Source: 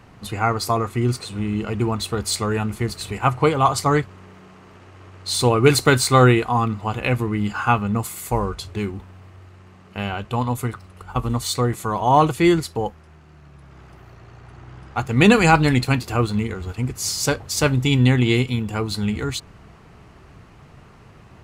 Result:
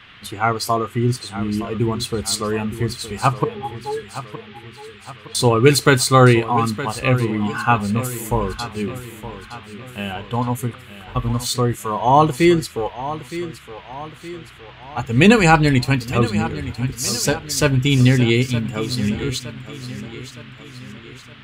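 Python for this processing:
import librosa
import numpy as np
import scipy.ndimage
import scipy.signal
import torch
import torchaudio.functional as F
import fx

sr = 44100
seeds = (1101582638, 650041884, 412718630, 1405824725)

p1 = fx.octave_resonator(x, sr, note='G#', decay_s=0.11, at=(3.44, 5.35))
p2 = fx.noise_reduce_blind(p1, sr, reduce_db=8)
p3 = fx.dmg_noise_band(p2, sr, seeds[0], low_hz=1100.0, high_hz=3400.0, level_db=-48.0)
p4 = p3 + fx.echo_feedback(p3, sr, ms=916, feedback_pct=49, wet_db=-13.5, dry=0)
y = p4 * 10.0 ** (2.0 / 20.0)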